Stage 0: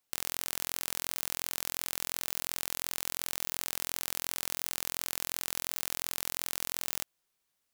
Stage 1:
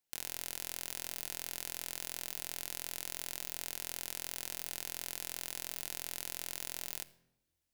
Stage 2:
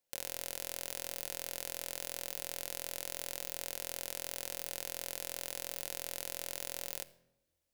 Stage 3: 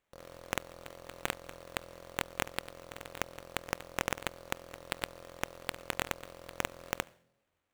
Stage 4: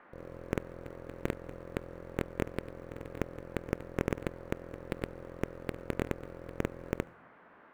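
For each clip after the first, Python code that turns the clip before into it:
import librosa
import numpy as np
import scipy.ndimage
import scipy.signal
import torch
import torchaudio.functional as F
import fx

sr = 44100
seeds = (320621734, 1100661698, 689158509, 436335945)

y1 = fx.peak_eq(x, sr, hz=1200.0, db=-11.0, octaves=0.23)
y1 = fx.room_shoebox(y1, sr, seeds[0], volume_m3=3700.0, walls='furnished', distance_m=0.79)
y1 = F.gain(torch.from_numpy(y1), -6.0).numpy()
y2 = fx.peak_eq(y1, sr, hz=550.0, db=12.5, octaves=0.4)
y3 = scipy.signal.sosfilt(scipy.signal.butter(4, 56.0, 'highpass', fs=sr, output='sos'), y2)
y3 = fx.sample_hold(y3, sr, seeds[1], rate_hz=5100.0, jitter_pct=20)
y3 = F.gain(torch.from_numpy(y3), 1.5).numpy()
y4 = fx.curve_eq(y3, sr, hz=(440.0, 780.0, 2200.0, 3200.0), db=(0, -16, -14, -22))
y4 = fx.dmg_noise_band(y4, sr, seeds[2], low_hz=170.0, high_hz=1700.0, level_db=-67.0)
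y4 = F.gain(torch.from_numpy(y4), 8.5).numpy()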